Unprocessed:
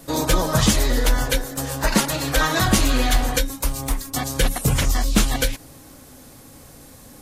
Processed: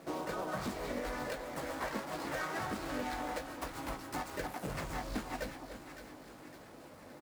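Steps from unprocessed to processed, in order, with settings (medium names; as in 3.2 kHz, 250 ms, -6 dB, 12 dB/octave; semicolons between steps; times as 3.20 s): median filter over 15 samples; high-pass 89 Hz 6 dB/octave; bass shelf 200 Hz -11.5 dB; de-hum 135.2 Hz, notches 11; compression, threshold -34 dBFS, peak gain reduction 15 dB; harmony voices +3 st -2 dB; doubling 20 ms -11 dB; two-band feedback delay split 1.3 kHz, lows 291 ms, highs 560 ms, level -9.5 dB; trim -4.5 dB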